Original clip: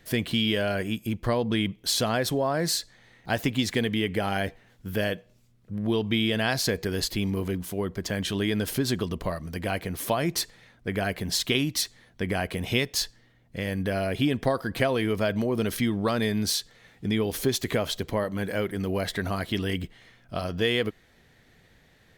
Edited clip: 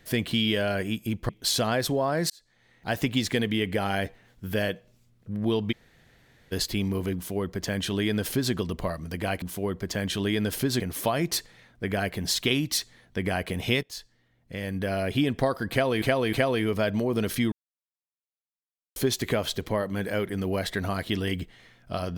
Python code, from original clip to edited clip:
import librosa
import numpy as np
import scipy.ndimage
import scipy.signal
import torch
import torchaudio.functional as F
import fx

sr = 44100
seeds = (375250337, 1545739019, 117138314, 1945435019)

y = fx.edit(x, sr, fx.cut(start_s=1.29, length_s=0.42),
    fx.fade_in_span(start_s=2.72, length_s=0.74),
    fx.room_tone_fill(start_s=6.14, length_s=0.8, crossfade_s=0.02),
    fx.duplicate(start_s=7.57, length_s=1.38, to_s=9.84),
    fx.fade_in_from(start_s=12.87, length_s=1.22, floor_db=-15.5),
    fx.repeat(start_s=14.75, length_s=0.31, count=3),
    fx.silence(start_s=15.94, length_s=1.44), tone=tone)